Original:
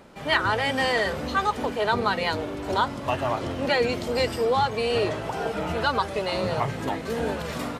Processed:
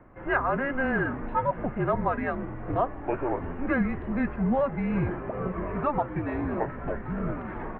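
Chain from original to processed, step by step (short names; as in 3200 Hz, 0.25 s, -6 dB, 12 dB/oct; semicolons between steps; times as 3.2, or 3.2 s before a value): mistuned SSB -270 Hz 200–2200 Hz; gain -2 dB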